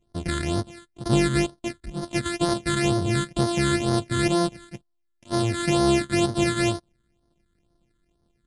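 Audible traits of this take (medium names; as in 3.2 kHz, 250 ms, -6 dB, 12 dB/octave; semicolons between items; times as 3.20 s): a buzz of ramps at a fixed pitch in blocks of 128 samples; phasing stages 8, 2.1 Hz, lowest notch 740–2500 Hz; MP3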